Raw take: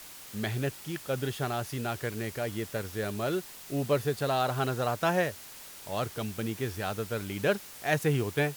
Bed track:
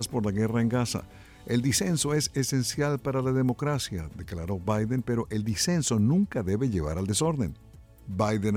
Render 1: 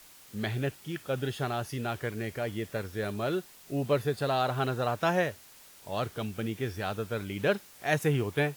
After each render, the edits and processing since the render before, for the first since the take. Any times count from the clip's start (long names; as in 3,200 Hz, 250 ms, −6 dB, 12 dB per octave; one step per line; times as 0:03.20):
noise reduction from a noise print 7 dB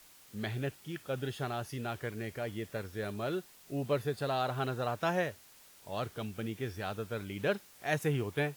level −4.5 dB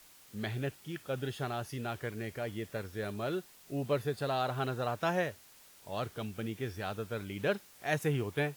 no processing that can be heard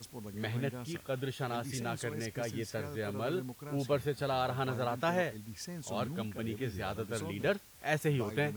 mix in bed track −17.5 dB